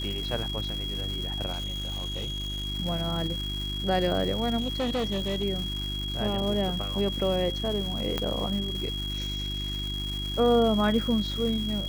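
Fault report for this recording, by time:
crackle 430 per s -33 dBFS
hum 50 Hz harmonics 7 -34 dBFS
whine 3.3 kHz -33 dBFS
1.51–2.67 s: clipped -28.5 dBFS
4.59–5.44 s: clipped -24 dBFS
8.18 s: pop -13 dBFS

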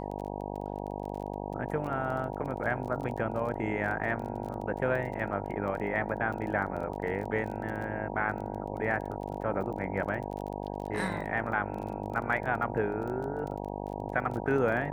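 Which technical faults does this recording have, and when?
buzz 50 Hz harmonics 19 -37 dBFS
crackle 21 per s -37 dBFS

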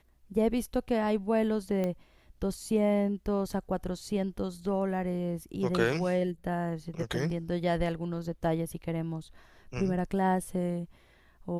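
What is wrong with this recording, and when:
1.84 s: pop -20 dBFS

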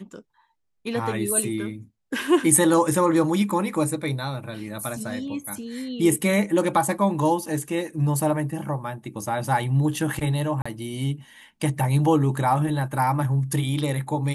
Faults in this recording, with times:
10.62–10.65 s: dropout 35 ms

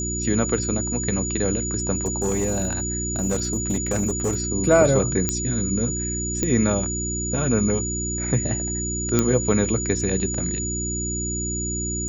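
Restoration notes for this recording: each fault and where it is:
hum 60 Hz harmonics 6 -29 dBFS
whine 6.9 kHz -27 dBFS
1.96–4.40 s: clipped -18 dBFS
5.29 s: pop -6 dBFS
6.43 s: pop -8 dBFS
9.19 s: pop -4 dBFS

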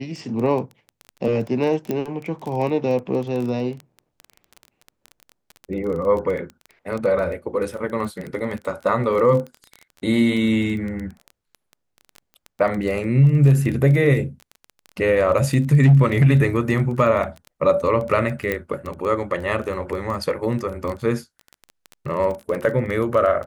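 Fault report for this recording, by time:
crackle 18 per s -26 dBFS
1.91 s: pop -13 dBFS
18.52 s: pop -11 dBFS

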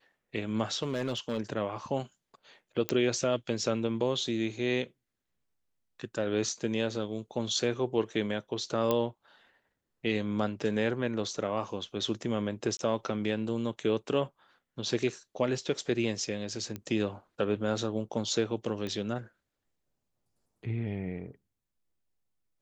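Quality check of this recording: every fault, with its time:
0.82–1.39 s: clipped -26.5 dBFS
2.89 s: pop -12 dBFS
8.91 s: pop -14 dBFS
12.77–12.79 s: dropout 22 ms
16.76 s: pop -23 dBFS
18.87 s: pop -23 dBFS

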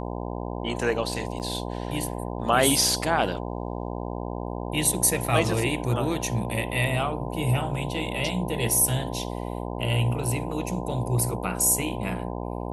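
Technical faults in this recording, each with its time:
buzz 60 Hz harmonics 17 -32 dBFS
1.39–1.40 s: dropout 8.5 ms

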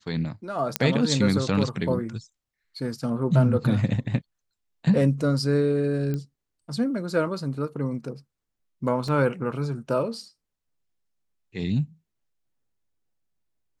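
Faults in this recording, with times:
0.76 s: pop -4 dBFS
6.14 s: pop -18 dBFS
9.08 s: dropout 2.9 ms

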